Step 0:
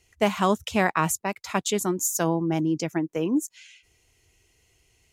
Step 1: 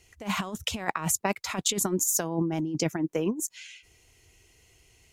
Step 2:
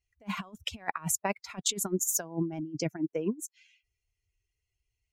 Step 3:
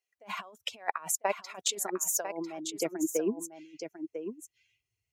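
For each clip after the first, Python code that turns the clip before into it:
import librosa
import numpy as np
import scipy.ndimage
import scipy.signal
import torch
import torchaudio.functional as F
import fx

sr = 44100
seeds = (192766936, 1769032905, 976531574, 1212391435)

y1 = fx.over_compress(x, sr, threshold_db=-27.0, ratio=-0.5)
y2 = fx.bin_expand(y1, sr, power=1.5)
y2 = fx.upward_expand(y2, sr, threshold_db=-40.0, expansion=1.5)
y3 = fx.filter_sweep_highpass(y2, sr, from_hz=510.0, to_hz=110.0, start_s=2.49, end_s=5.0, q=1.7)
y3 = y3 + 10.0 ** (-8.5 / 20.0) * np.pad(y3, (int(998 * sr / 1000.0), 0))[:len(y3)]
y3 = y3 * 10.0 ** (-1.0 / 20.0)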